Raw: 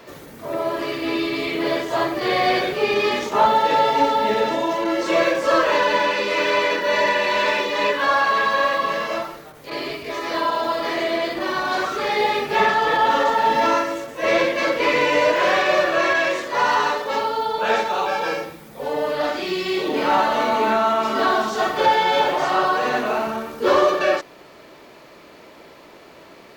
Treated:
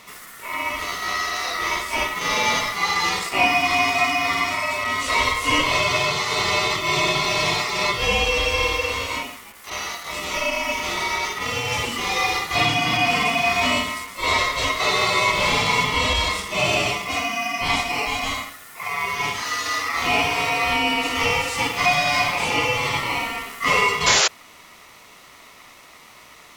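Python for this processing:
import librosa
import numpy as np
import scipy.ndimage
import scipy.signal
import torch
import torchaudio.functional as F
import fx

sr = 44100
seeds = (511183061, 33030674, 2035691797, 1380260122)

y = fx.peak_eq(x, sr, hz=10000.0, db=13.5, octaves=1.8)
y = y * np.sin(2.0 * np.pi * 1600.0 * np.arange(len(y)) / sr)
y = fx.spec_paint(y, sr, seeds[0], shape='noise', start_s=24.06, length_s=0.22, low_hz=340.0, high_hz=7400.0, level_db=-17.0)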